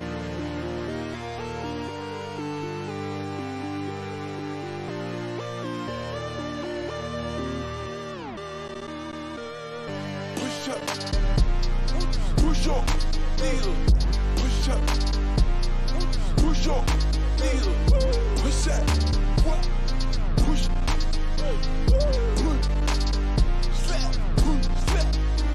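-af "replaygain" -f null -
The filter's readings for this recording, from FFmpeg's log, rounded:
track_gain = +10.8 dB
track_peak = 0.199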